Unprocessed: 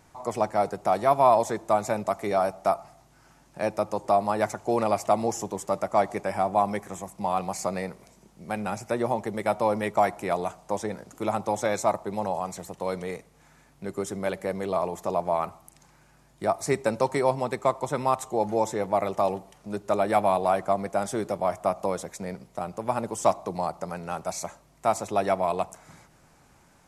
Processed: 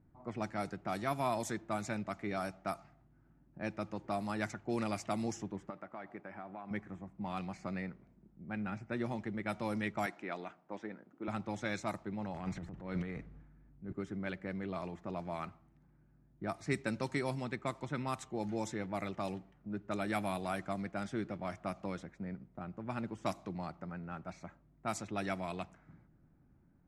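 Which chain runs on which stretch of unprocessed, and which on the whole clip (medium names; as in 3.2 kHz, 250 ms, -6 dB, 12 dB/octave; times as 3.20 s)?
5.70–6.71 s: peaking EQ 6.5 kHz -6.5 dB 0.61 oct + compression 5:1, threshold -25 dBFS + high-pass 450 Hz 6 dB/octave
10.06–11.28 s: high-pass 280 Hz + distance through air 62 m
12.34–13.93 s: bass shelf 82 Hz +10.5 dB + transient shaper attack -7 dB, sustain +9 dB
whole clip: level-controlled noise filter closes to 640 Hz, open at -18 dBFS; high-order bell 680 Hz -11.5 dB; trim -5 dB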